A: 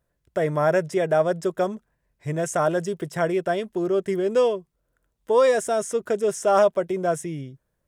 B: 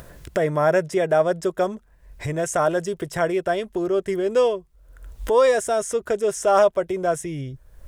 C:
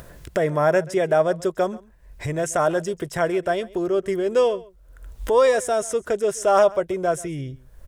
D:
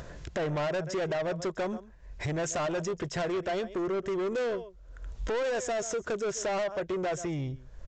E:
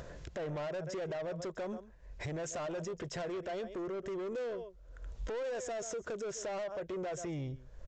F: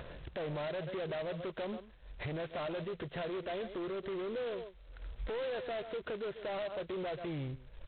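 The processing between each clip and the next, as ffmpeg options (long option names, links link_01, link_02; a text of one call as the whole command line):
ffmpeg -i in.wav -af "acompressor=mode=upward:threshold=-23dB:ratio=2.5,asubboost=boost=9.5:cutoff=58,volume=2dB" out.wav
ffmpeg -i in.wav -filter_complex "[0:a]asplit=2[link_01][link_02];[link_02]adelay=134.1,volume=-21dB,highshelf=frequency=4000:gain=-3.02[link_03];[link_01][link_03]amix=inputs=2:normalize=0" out.wav
ffmpeg -i in.wav -af "acompressor=threshold=-19dB:ratio=6,aresample=16000,asoftclip=type=tanh:threshold=-27.5dB,aresample=44100" out.wav
ffmpeg -i in.wav -af "equalizer=frequency=520:width=2.3:gain=4.5,alimiter=level_in=5.5dB:limit=-24dB:level=0:latency=1:release=45,volume=-5.5dB,volume=-4.5dB" out.wav
ffmpeg -i in.wav -ar 8000 -c:a adpcm_g726 -b:a 16k out.wav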